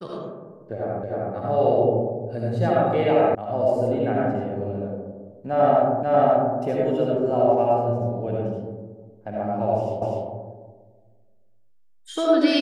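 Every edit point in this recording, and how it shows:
1.03 repeat of the last 0.31 s
3.35 sound cut off
6.03 repeat of the last 0.54 s
10.02 repeat of the last 0.25 s

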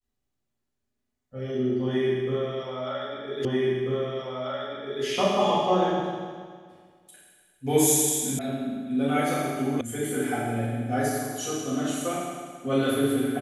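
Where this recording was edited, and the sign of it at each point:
3.45 repeat of the last 1.59 s
8.39 sound cut off
9.81 sound cut off

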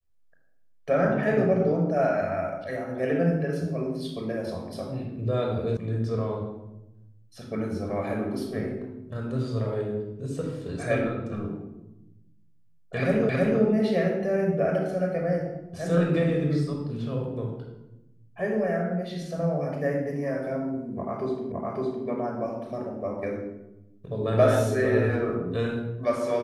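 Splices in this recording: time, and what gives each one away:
5.77 sound cut off
13.29 repeat of the last 0.32 s
21.52 repeat of the last 0.56 s

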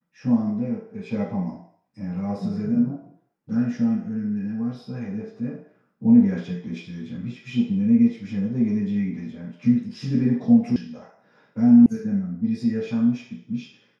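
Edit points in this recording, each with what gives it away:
10.76 sound cut off
11.86 sound cut off

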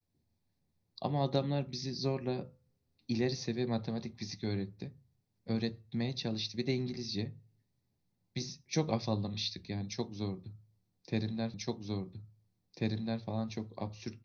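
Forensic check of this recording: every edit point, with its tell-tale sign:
11.54 repeat of the last 1.69 s

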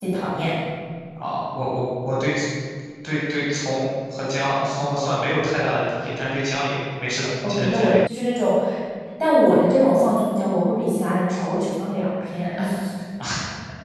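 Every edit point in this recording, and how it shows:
8.07 sound cut off

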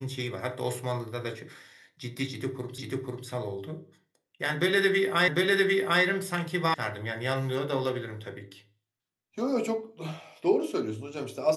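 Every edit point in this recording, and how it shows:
2.78 repeat of the last 0.49 s
5.28 repeat of the last 0.75 s
6.74 sound cut off

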